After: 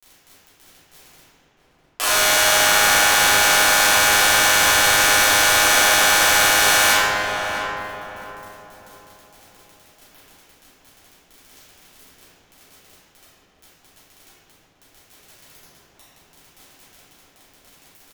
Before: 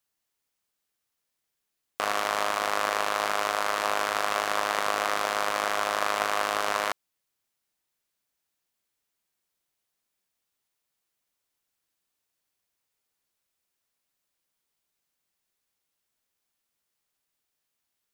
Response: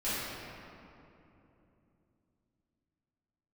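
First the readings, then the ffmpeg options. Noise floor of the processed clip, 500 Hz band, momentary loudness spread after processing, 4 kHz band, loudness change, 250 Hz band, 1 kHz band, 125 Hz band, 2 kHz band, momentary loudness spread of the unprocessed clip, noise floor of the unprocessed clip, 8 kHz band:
-58 dBFS, +7.0 dB, 11 LU, +17.0 dB, +13.0 dB, +10.0 dB, +8.0 dB, +17.5 dB, +15.0 dB, 2 LU, -82 dBFS, +21.5 dB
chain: -filter_complex "[0:a]equalizer=f=250:t=o:w=1.6:g=-6.5,bandreject=f=283.3:t=h:w=4,bandreject=f=566.6:t=h:w=4,bandreject=f=849.9:t=h:w=4,areverse,acompressor=mode=upward:threshold=-36dB:ratio=2.5,areverse,alimiter=limit=-14.5dB:level=0:latency=1:release=94,acontrast=24,crystalizer=i=6.5:c=0,flanger=delay=2:depth=4.5:regen=-71:speed=1.3:shape=sinusoidal,aeval=exprs='val(0)*gte(abs(val(0)),0.0531)':c=same,asplit=2[a][b];[b]adelay=654,lowpass=f=1.1k:p=1,volume=-3.5dB,asplit=2[c][d];[d]adelay=654,lowpass=f=1.1k:p=1,volume=0.41,asplit=2[e][f];[f]adelay=654,lowpass=f=1.1k:p=1,volume=0.41,asplit=2[g][h];[h]adelay=654,lowpass=f=1.1k:p=1,volume=0.41,asplit=2[i][j];[j]adelay=654,lowpass=f=1.1k:p=1,volume=0.41[k];[a][c][e][g][i][k]amix=inputs=6:normalize=0[l];[1:a]atrim=start_sample=2205,asetrate=57330,aresample=44100[m];[l][m]afir=irnorm=-1:irlink=0,volume=5dB"

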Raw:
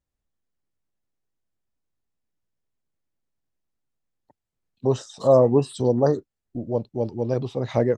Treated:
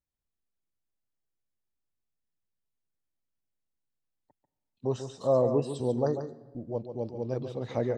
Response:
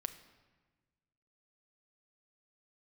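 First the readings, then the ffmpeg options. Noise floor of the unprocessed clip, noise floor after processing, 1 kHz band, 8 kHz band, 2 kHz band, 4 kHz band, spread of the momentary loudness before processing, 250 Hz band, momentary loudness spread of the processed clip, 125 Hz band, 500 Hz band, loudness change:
-85 dBFS, under -85 dBFS, -8.0 dB, -8.0 dB, n/a, -8.0 dB, 12 LU, -8.0 dB, 12 LU, -8.0 dB, -8.0 dB, -8.0 dB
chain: -filter_complex "[0:a]asplit=2[a][b];[1:a]atrim=start_sample=2205,adelay=142[c];[b][c]afir=irnorm=-1:irlink=0,volume=-7dB[d];[a][d]amix=inputs=2:normalize=0,volume=-8.5dB"

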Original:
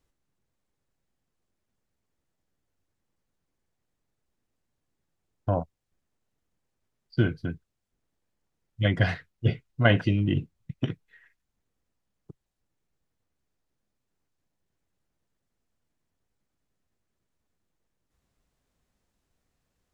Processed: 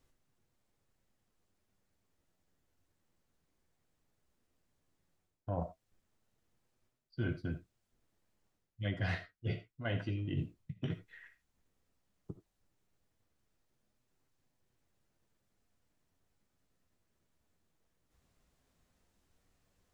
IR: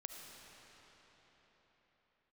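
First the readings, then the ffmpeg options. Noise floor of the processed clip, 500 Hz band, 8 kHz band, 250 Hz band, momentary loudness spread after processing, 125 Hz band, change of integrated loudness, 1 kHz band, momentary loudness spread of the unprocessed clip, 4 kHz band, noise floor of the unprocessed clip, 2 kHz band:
-82 dBFS, -13.0 dB, n/a, -12.0 dB, 16 LU, -11.5 dB, -12.5 dB, -12.5 dB, 15 LU, -13.0 dB, -81 dBFS, -13.0 dB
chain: -filter_complex "[0:a]areverse,acompressor=threshold=-37dB:ratio=5,areverse,flanger=delay=7.7:depth=5.4:regen=-43:speed=0.14:shape=triangular[a];[1:a]atrim=start_sample=2205,atrim=end_sample=3969[b];[a][b]afir=irnorm=-1:irlink=0,volume=11.5dB"

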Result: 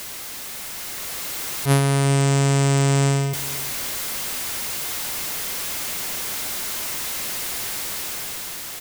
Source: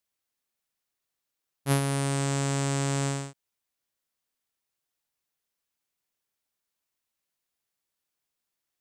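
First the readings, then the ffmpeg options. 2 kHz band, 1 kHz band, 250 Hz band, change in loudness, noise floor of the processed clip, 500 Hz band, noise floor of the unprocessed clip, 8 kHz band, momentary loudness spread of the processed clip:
+11.5 dB, +8.5 dB, +8.0 dB, +5.0 dB, -34 dBFS, +9.5 dB, -85 dBFS, +12.5 dB, 10 LU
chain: -filter_complex "[0:a]aeval=exprs='val(0)+0.5*0.0447*sgn(val(0))':c=same,aeval=exprs='val(0)+0.00224*sin(2*PI*2100*n/s)':c=same,asplit=2[a][b];[b]aecho=0:1:390:0.126[c];[a][c]amix=inputs=2:normalize=0,dynaudnorm=f=200:g=11:m=6dB"

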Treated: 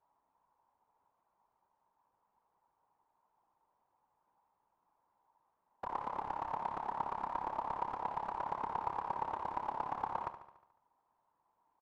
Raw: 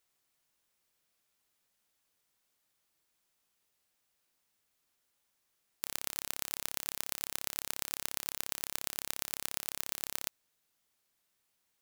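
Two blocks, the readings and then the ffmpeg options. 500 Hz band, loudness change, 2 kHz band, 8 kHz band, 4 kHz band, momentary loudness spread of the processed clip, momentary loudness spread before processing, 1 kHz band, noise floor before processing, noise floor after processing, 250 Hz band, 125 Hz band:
+6.0 dB, -2.5 dB, -7.0 dB, under -35 dB, under -20 dB, 3 LU, 1 LU, +15.5 dB, -79 dBFS, -81 dBFS, +3.0 dB, +2.0 dB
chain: -af "lowpass=f=930:t=q:w=11,afftfilt=real='hypot(re,im)*cos(2*PI*random(0))':imag='hypot(re,im)*sin(2*PI*random(1))':win_size=512:overlap=0.75,aecho=1:1:72|144|216|288|360|432|504:0.266|0.154|0.0895|0.0519|0.0301|0.0175|0.0101,volume=7.5dB"

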